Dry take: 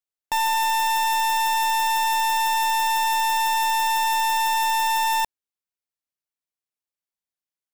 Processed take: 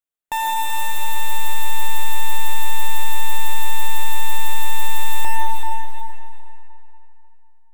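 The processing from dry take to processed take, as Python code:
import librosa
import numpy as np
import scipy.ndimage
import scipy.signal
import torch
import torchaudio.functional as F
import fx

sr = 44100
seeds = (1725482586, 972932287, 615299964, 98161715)

p1 = fx.peak_eq(x, sr, hz=5100.0, db=-13.5, octaves=0.42)
p2 = p1 + fx.echo_feedback(p1, sr, ms=383, feedback_pct=23, wet_db=-8.0, dry=0)
y = fx.rev_freeverb(p2, sr, rt60_s=3.2, hf_ratio=0.6, predelay_ms=65, drr_db=-2.0)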